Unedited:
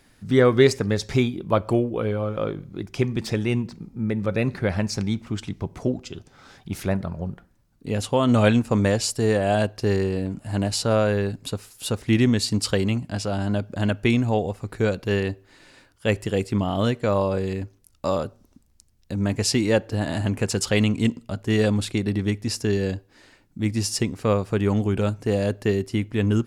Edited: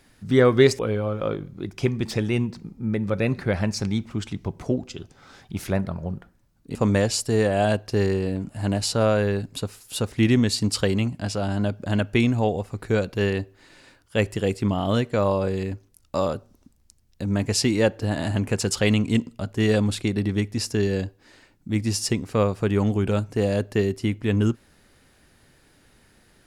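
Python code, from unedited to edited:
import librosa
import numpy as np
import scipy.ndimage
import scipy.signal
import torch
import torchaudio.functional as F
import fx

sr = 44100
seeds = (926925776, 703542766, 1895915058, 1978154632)

y = fx.edit(x, sr, fx.cut(start_s=0.79, length_s=1.16),
    fx.cut(start_s=7.91, length_s=0.74), tone=tone)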